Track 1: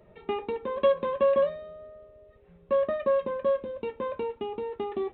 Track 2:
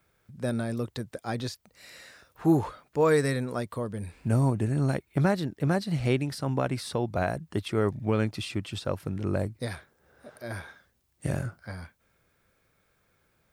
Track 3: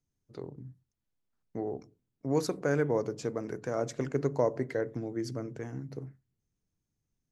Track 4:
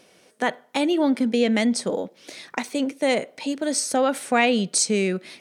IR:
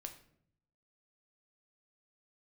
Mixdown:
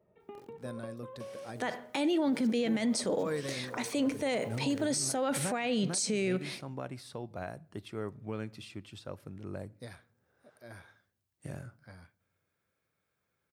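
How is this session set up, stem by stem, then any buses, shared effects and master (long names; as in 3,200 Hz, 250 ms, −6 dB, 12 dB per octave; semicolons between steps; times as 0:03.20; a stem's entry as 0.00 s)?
−12.5 dB, 0.00 s, no send, high-shelf EQ 2,300 Hz −11 dB; downward compressor, threshold −31 dBFS, peak gain reduction 12 dB
−14.0 dB, 0.20 s, send −7.5 dB, no processing
−17.5 dB, 0.00 s, no send, hold until the input has moved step −38 dBFS; background raised ahead of every attack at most 61 dB per second
−1.5 dB, 1.20 s, send −7 dB, no processing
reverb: on, RT60 0.65 s, pre-delay 7 ms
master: high-pass filter 84 Hz; brickwall limiter −22.5 dBFS, peak gain reduction 17.5 dB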